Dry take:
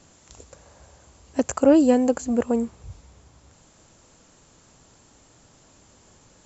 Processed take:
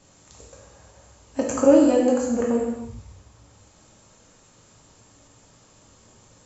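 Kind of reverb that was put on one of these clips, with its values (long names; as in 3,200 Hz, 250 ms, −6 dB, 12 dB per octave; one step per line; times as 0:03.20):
reverb whose tail is shaped and stops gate 360 ms falling, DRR −3 dB
level −4 dB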